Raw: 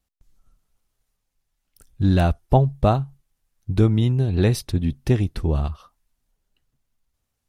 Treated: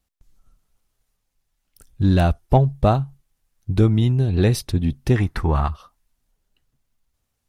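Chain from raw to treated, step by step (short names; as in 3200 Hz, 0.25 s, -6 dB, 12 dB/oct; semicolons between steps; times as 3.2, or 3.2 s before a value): 5.16–5.7 band shelf 1300 Hz +11.5 dB; in parallel at -10.5 dB: soft clip -19.5 dBFS, distortion -8 dB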